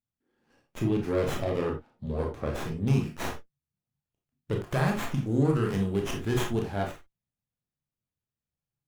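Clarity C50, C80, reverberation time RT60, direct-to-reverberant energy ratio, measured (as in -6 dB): 7.5 dB, 15.0 dB, no single decay rate, 1.0 dB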